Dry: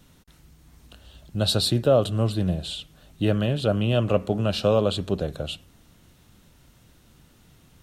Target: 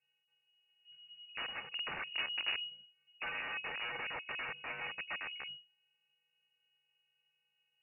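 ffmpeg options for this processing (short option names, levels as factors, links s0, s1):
-filter_complex "[0:a]bandreject=f=1700:w=5.8,afwtdn=0.0398,asettb=1/sr,asplit=3[s0][s1][s2];[s0]atrim=end=3.354[s3];[s1]atrim=start=3.35:end=4.56,asetpts=PTS-STARTPTS,afade=t=in:d=0.004:c=qsin,afade=t=out:st=1.206:d=0.004:c=qsin,aecho=1:1:3.3:0.51,atrim=end_sample=53361[s4];[s2]atrim=start=4.556[s5];[s3][s4]acrossfade=d=0.004:c1=hsin:c2=qsin[s6];[s6][s5]acrossfade=d=0.004:c1=qsin:c2=hsin,asplit=2[s7][s8];[s8]acompressor=threshold=0.0251:ratio=6,volume=0.75[s9];[s7][s9]amix=inputs=2:normalize=0,asettb=1/sr,asplit=3[s10][s11][s12];[s10]atrim=end=1.654[s13];[s11]atrim=start=1.65:end=2.63,asetpts=PTS-STARTPTS,afade=t=in:d=0.004:c=qsin,afade=t=out:st=0.976:d=0.004:c=qsin,afreqshift=-230[s14];[s12]atrim=start=2.626[s15];[s13][s14]acrossfade=d=0.004:c1=hsin:c2=qsin[s16];[s16][s15]acrossfade=d=0.004:c1=qsin:c2=hsin,flanger=delay=15.5:depth=2.6:speed=0.36,afftfilt=real='hypot(re,im)*cos(PI*b)':imag='0':win_size=512:overlap=0.75,aeval=exprs='(mod(22.4*val(0)+1,2)-1)/22.4':c=same,lowpass=f=2500:t=q:w=0.5098,lowpass=f=2500:t=q:w=0.6013,lowpass=f=2500:t=q:w=0.9,lowpass=f=2500:t=q:w=2.563,afreqshift=-2900,volume=0.473"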